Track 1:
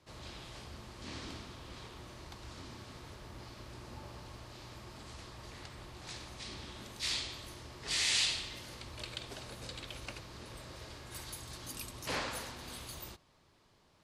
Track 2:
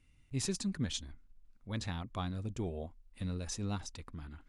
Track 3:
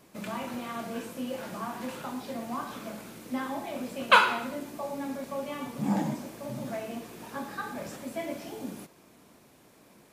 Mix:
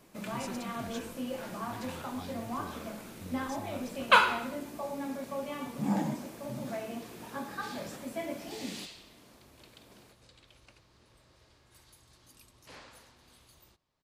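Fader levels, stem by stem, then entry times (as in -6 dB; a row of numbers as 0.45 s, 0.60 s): -14.5 dB, -8.5 dB, -2.0 dB; 0.60 s, 0.00 s, 0.00 s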